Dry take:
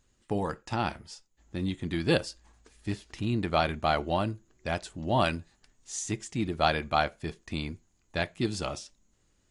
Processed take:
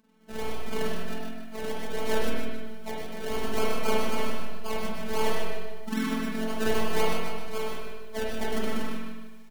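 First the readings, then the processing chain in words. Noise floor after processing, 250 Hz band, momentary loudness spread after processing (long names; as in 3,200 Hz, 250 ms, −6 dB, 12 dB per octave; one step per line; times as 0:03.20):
−39 dBFS, 0.0 dB, 10 LU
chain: frequency axis turned over on the octave scale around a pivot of 1,300 Hz
in parallel at −2.5 dB: downward compressor, threshold −40 dBFS, peak gain reduction 16.5 dB
on the sum: sample-and-hold swept by an LFO 33×, swing 60% 3.8 Hz
phases set to zero 219 Hz
multi-tap delay 101/124 ms −10/−7 dB
spring reverb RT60 1.2 s, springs 34/49 ms, chirp 45 ms, DRR −3.5 dB
feedback echo at a low word length 152 ms, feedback 35%, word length 9 bits, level −8 dB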